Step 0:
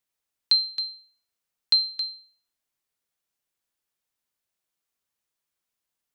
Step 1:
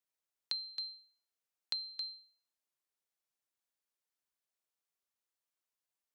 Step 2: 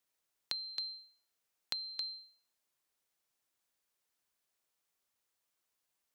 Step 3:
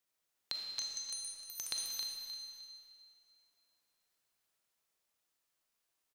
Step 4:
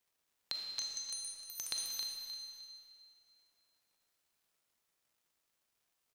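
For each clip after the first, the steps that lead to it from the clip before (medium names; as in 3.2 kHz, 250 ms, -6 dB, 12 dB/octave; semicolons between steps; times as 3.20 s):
tone controls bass -9 dB, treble +7 dB; compression, threshold -24 dBFS, peak gain reduction 11 dB; treble shelf 3.5 kHz -9.5 dB; trim -6.5 dB
compression 3:1, threshold -45 dBFS, peak gain reduction 9.5 dB; trim +7 dB
ever faster or slower copies 449 ms, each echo +7 st, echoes 3; feedback delay 306 ms, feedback 26%, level -11.5 dB; reverberation RT60 2.3 s, pre-delay 4 ms, DRR 1 dB; trim -2 dB
crackle 250 per s -69 dBFS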